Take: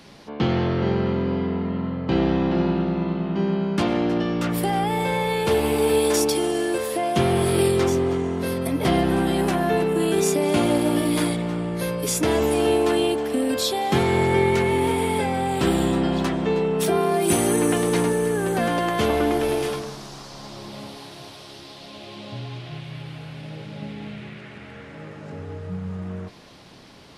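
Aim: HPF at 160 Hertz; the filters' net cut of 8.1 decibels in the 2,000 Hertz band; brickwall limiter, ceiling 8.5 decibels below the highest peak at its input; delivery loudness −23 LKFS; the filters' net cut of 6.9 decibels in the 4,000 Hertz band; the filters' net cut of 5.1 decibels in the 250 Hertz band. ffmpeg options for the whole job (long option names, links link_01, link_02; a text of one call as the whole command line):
ffmpeg -i in.wav -af "highpass=160,equalizer=frequency=250:width_type=o:gain=-6,equalizer=frequency=2000:width_type=o:gain=-8.5,equalizer=frequency=4000:width_type=o:gain=-6,volume=5dB,alimiter=limit=-14dB:level=0:latency=1" out.wav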